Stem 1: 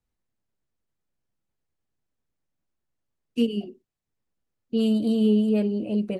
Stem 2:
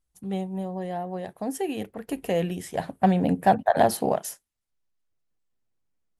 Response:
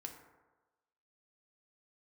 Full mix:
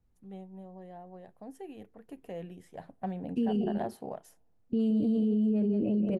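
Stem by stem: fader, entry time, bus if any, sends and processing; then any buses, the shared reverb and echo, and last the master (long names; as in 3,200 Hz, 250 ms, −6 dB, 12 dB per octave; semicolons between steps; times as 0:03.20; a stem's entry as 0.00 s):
+2.0 dB, 0.00 s, no send, echo send −9.5 dB, low-shelf EQ 470 Hz +9.5 dB; brickwall limiter −17 dBFS, peak gain reduction 11.5 dB
−15.5 dB, 0.00 s, send −22 dB, no echo send, no processing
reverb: on, RT60 1.2 s, pre-delay 3 ms
echo: single-tap delay 173 ms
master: high-shelf EQ 2,600 Hz −9.5 dB; brickwall limiter −22 dBFS, peak gain reduction 9.5 dB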